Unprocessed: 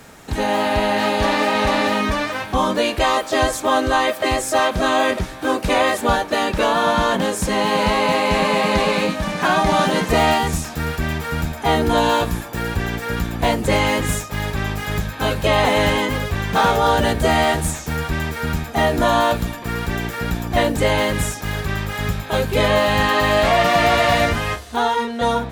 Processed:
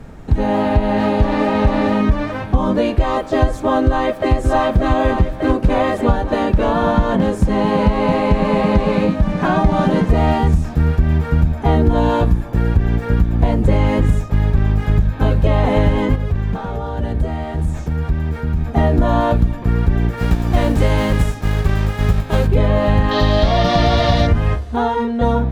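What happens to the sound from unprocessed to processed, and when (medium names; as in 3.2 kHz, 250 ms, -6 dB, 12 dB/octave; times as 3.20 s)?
3.85–4.34 s: echo throw 590 ms, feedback 70%, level -3.5 dB
16.15–18.73 s: compression, threshold -25 dBFS
20.17–22.46 s: formants flattened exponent 0.6
23.11–24.27 s: high-order bell 4.4 kHz +13 dB 1.1 oct
whole clip: tilt EQ -4 dB/octave; compression, threshold -8 dBFS; trim -1 dB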